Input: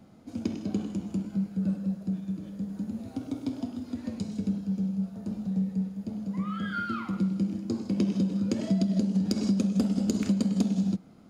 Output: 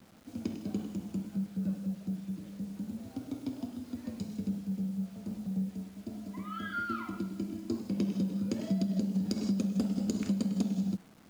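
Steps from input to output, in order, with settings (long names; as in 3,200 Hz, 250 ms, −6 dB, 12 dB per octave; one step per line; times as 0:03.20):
0:05.70–0:07.79: comb filter 3 ms, depth 71%
bit reduction 9 bits
level −5 dB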